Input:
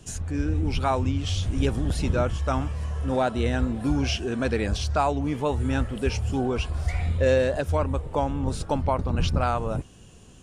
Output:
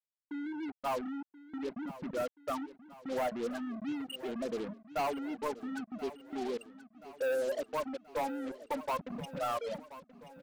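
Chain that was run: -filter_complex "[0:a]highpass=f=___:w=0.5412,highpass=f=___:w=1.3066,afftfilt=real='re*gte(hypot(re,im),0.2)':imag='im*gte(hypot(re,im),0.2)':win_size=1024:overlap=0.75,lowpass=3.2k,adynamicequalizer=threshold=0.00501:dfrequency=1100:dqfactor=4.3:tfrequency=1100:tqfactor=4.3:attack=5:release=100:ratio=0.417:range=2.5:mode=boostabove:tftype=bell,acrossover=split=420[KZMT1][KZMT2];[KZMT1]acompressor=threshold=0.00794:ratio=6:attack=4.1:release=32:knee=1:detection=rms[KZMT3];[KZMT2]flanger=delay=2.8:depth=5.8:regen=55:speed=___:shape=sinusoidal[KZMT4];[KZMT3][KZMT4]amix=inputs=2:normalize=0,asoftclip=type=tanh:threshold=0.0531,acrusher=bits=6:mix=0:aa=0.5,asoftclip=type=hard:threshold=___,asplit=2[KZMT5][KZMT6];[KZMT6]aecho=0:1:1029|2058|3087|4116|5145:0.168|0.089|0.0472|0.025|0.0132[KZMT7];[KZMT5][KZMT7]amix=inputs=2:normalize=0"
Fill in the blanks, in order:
170, 170, 0.43, 0.0355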